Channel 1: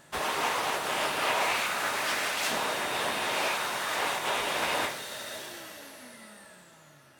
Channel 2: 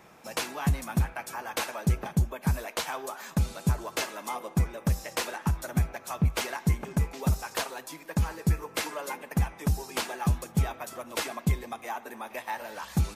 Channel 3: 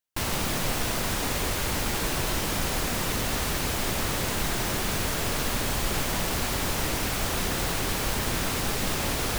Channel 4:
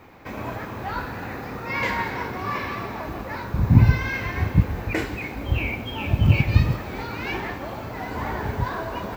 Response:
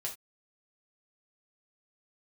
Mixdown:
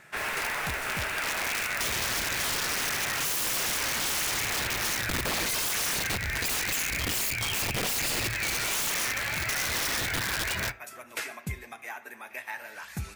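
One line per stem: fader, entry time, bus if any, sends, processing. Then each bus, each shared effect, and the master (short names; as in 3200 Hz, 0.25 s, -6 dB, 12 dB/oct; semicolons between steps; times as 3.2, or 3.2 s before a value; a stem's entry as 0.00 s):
-7.0 dB, 0.00 s, no bus, send -7.5 dB, dry
-11.0 dB, 0.00 s, bus A, send -6.5 dB, dry
-17.5 dB, 0.00 s, bus A, no send, dry
+2.5 dB, 1.55 s, bus A, send -15.5 dB, graphic EQ 125/250/500/1000/2000/4000/8000 Hz +5/-12/-4/-5/+8/+5/+8 dB; phaser 0.33 Hz, delay 3.9 ms, feedback 38%
bus A: 0.0 dB, high shelf 3100 Hz +9 dB; compressor 2:1, threshold -34 dBFS, peak gain reduction 17 dB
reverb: on, pre-delay 3 ms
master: band shelf 1900 Hz +9.5 dB 1.1 oct; wrapped overs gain 19 dB; compressor, threshold -27 dBFS, peak gain reduction 5.5 dB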